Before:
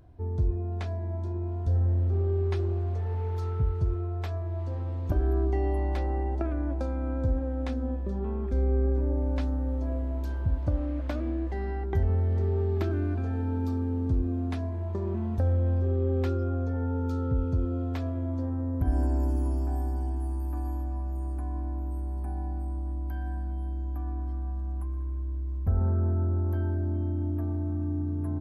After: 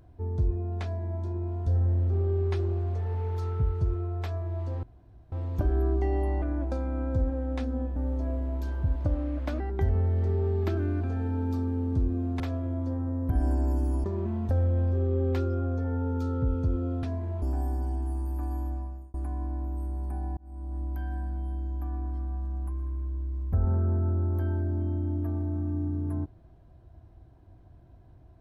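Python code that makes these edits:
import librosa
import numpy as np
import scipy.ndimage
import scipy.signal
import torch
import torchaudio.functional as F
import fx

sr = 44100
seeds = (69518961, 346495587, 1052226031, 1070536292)

y = fx.edit(x, sr, fx.insert_room_tone(at_s=4.83, length_s=0.49),
    fx.cut(start_s=5.93, length_s=0.58),
    fx.cut(start_s=8.05, length_s=1.53),
    fx.cut(start_s=11.22, length_s=0.52),
    fx.swap(start_s=14.54, length_s=0.39, other_s=17.92, other_length_s=1.64),
    fx.fade_out_span(start_s=20.86, length_s=0.42),
    fx.fade_in_span(start_s=22.51, length_s=0.44), tone=tone)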